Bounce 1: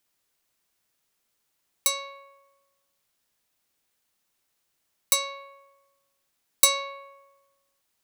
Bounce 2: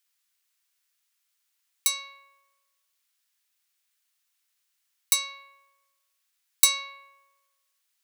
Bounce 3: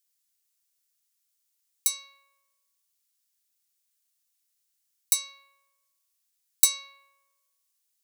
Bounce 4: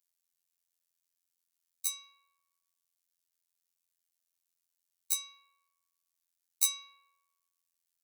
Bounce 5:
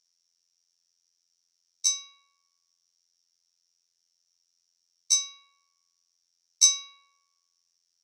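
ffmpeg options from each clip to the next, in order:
-af "highpass=1.5k"
-af "bass=f=250:g=12,treble=f=4k:g=11,volume=-10.5dB"
-af "afftfilt=real='hypot(re,im)*cos(PI*b)':imag='0':win_size=2048:overlap=0.75,volume=-4.5dB"
-af "lowpass=f=5.6k:t=q:w=13,volume=3.5dB"

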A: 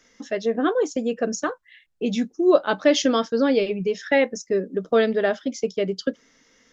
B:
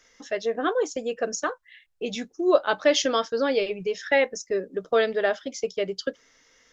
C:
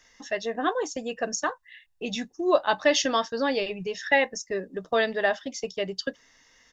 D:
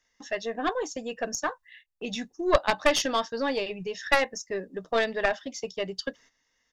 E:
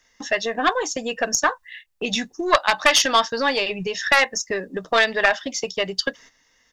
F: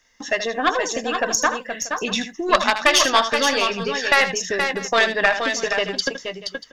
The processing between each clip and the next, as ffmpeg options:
-af "equalizer=f=220:t=o:w=1.2:g=-11.5"
-af "aecho=1:1:1.1:0.45"
-af "agate=range=-12dB:threshold=-50dB:ratio=16:detection=peak,aeval=exprs='0.447*(cos(1*acos(clip(val(0)/0.447,-1,1)))-cos(1*PI/2))+0.0316*(cos(3*acos(clip(val(0)/0.447,-1,1)))-cos(3*PI/2))+0.2*(cos(4*acos(clip(val(0)/0.447,-1,1)))-cos(4*PI/2))+0.1*(cos(6*acos(clip(val(0)/0.447,-1,1)))-cos(6*PI/2))+0.01*(cos(8*acos(clip(val(0)/0.447,-1,1)))-cos(8*PI/2))':c=same"
-filter_complex "[0:a]acrossover=split=790[a][b];[a]acompressor=threshold=-37dB:ratio=6[c];[c][b]amix=inputs=2:normalize=0,alimiter=level_in=12.5dB:limit=-1dB:release=50:level=0:latency=1,volume=-1dB"
-af "aecho=1:1:78|474|491|637:0.299|0.473|0.126|0.126"

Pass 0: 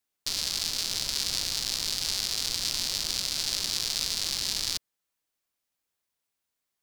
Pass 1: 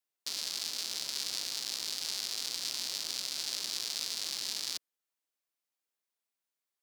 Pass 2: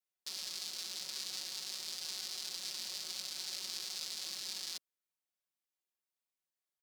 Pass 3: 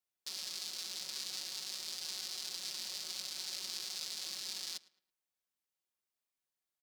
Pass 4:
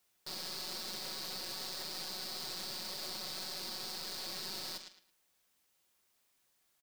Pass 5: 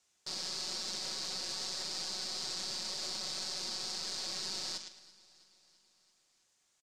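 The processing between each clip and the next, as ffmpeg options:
-af "highpass=250,volume=-6.5dB"
-af "aecho=1:1:5.4:0.75,volume=-7.5dB"
-filter_complex "[0:a]asplit=2[a][b];[b]adelay=109,lowpass=f=3.6k:p=1,volume=-20dB,asplit=2[c][d];[d]adelay=109,lowpass=f=3.6k:p=1,volume=0.35,asplit=2[e][f];[f]adelay=109,lowpass=f=3.6k:p=1,volume=0.35[g];[a][c][e][g]amix=inputs=4:normalize=0"
-filter_complex "[0:a]alimiter=level_in=9.5dB:limit=-24dB:level=0:latency=1,volume=-9.5dB,aeval=exprs='(tanh(447*val(0)+0.45)-tanh(0.45))/447':c=same,asplit=2[a][b];[b]adelay=43,volume=-12dB[c];[a][c]amix=inputs=2:normalize=0,volume=17dB"
-af "lowpass=f=6.9k:t=q:w=2.3,aecho=1:1:332|664|996|1328|1660:0.0841|0.0505|0.0303|0.0182|0.0109"

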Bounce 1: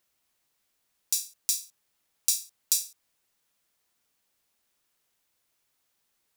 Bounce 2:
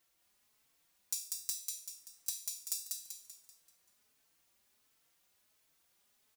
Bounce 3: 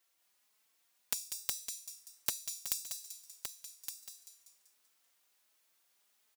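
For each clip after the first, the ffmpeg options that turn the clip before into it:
-filter_complex "[0:a]acompressor=threshold=-33dB:ratio=10,asplit=2[a][b];[b]aecho=0:1:193|386|579|772|965|1158:0.708|0.319|0.143|0.0645|0.029|0.0131[c];[a][c]amix=inputs=2:normalize=0,asplit=2[d][e];[e]adelay=4,afreqshift=1.4[f];[d][f]amix=inputs=2:normalize=1,volume=2.5dB"
-filter_complex "[0:a]highpass=f=500:p=1,aeval=exprs='0.237*(cos(1*acos(clip(val(0)/0.237,-1,1)))-cos(1*PI/2))+0.119*(cos(3*acos(clip(val(0)/0.237,-1,1)))-cos(3*PI/2))':c=same,asplit=2[a][b];[b]aecho=0:1:1166:0.398[c];[a][c]amix=inputs=2:normalize=0,volume=5.5dB"

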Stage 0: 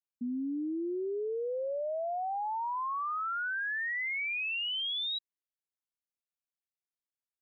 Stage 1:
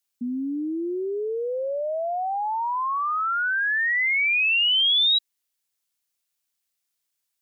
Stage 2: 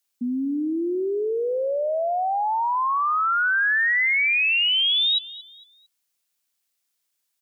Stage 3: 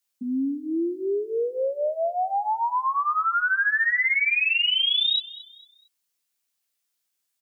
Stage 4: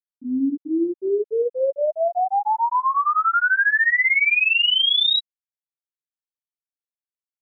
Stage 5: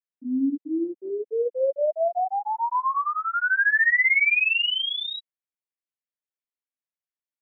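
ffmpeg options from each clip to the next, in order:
-af "highshelf=f=2.1k:g=11.5,volume=6dB"
-af "highpass=140,alimiter=limit=-20.5dB:level=0:latency=1:release=146,aecho=1:1:226|452|678:0.126|0.0441|0.0154,volume=3dB"
-filter_complex "[0:a]asplit=2[a][b];[b]adelay=15,volume=-2dB[c];[a][c]amix=inputs=2:normalize=0,volume=-4dB"
-filter_complex "[0:a]asplit=2[a][b];[b]adelay=63,lowpass=f=2.5k:p=1,volume=-12dB,asplit=2[c][d];[d]adelay=63,lowpass=f=2.5k:p=1,volume=0.54,asplit=2[e][f];[f]adelay=63,lowpass=f=2.5k:p=1,volume=0.54,asplit=2[g][h];[h]adelay=63,lowpass=f=2.5k:p=1,volume=0.54,asplit=2[i][j];[j]adelay=63,lowpass=f=2.5k:p=1,volume=0.54,asplit=2[k][l];[l]adelay=63,lowpass=f=2.5k:p=1,volume=0.54[m];[a][c][e][g][i][k][m]amix=inputs=7:normalize=0,afftfilt=real='re*gte(hypot(re,im),0.398)':imag='im*gte(hypot(re,im),0.398)':win_size=1024:overlap=0.75,volume=4.5dB"
-af "highpass=f=210:w=0.5412,highpass=f=210:w=1.3066,equalizer=f=380:t=q:w=4:g=-10,equalizer=f=840:t=q:w=4:g=-6,equalizer=f=1.3k:t=q:w=4:g=-8,lowpass=f=2.6k:w=0.5412,lowpass=f=2.6k:w=1.3066"

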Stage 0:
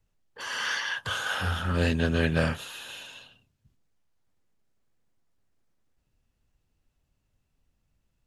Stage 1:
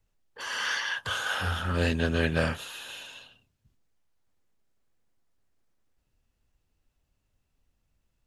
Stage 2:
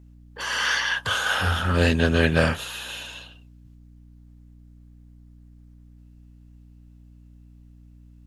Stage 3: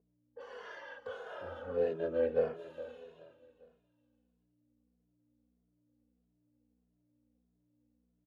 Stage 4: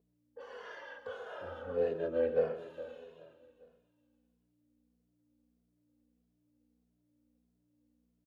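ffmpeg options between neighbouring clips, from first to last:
-af "equalizer=f=150:t=o:w=1.4:g=-3.5"
-af "aeval=exprs='val(0)+0.002*(sin(2*PI*60*n/s)+sin(2*PI*2*60*n/s)/2+sin(2*PI*3*60*n/s)/3+sin(2*PI*4*60*n/s)/4+sin(2*PI*5*60*n/s)/5)':c=same,volume=6.5dB"
-filter_complex "[0:a]bandpass=f=500:t=q:w=4.7:csg=0,aecho=1:1:413|826|1239:0.168|0.0655|0.0255,asplit=2[a][b];[b]adelay=2.4,afreqshift=-1.6[c];[a][c]amix=inputs=2:normalize=1"
-af "aecho=1:1:130:0.237"

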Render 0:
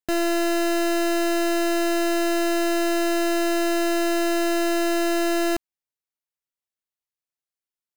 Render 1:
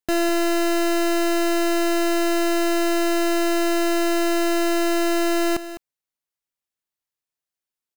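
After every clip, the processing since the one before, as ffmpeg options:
-af "aecho=1:1:205:0.211,volume=2dB"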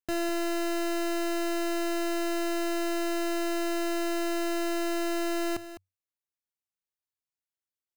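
-af "equalizer=f=94:w=5.9:g=10.5,volume=-9dB"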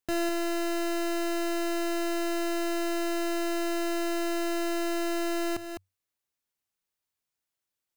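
-af "alimiter=level_in=9dB:limit=-24dB:level=0:latency=1:release=207,volume=-9dB,volume=6.5dB"

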